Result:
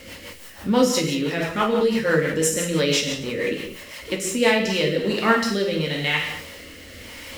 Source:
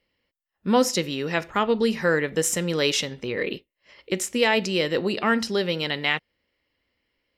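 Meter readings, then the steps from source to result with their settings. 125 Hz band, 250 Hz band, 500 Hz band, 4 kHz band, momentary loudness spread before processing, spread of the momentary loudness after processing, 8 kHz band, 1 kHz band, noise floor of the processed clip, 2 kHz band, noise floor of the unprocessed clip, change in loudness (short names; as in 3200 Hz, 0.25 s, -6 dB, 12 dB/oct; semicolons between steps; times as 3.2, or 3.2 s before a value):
+4.0 dB, +3.0 dB, +2.5 dB, +2.0 dB, 8 LU, 19 LU, +2.5 dB, +1.5 dB, -42 dBFS, +2.0 dB, -82 dBFS, +2.0 dB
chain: zero-crossing step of -34.5 dBFS; non-linear reverb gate 0.28 s falling, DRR -1.5 dB; rotary speaker horn 6 Hz, later 1 Hz, at 4.19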